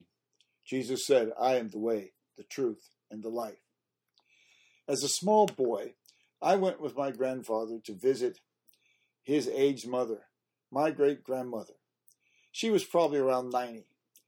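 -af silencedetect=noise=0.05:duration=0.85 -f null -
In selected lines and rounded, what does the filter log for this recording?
silence_start: 3.43
silence_end: 4.90 | silence_duration: 1.46
silence_start: 8.28
silence_end: 9.30 | silence_duration: 1.02
silence_start: 11.57
silence_end: 12.59 | silence_duration: 1.02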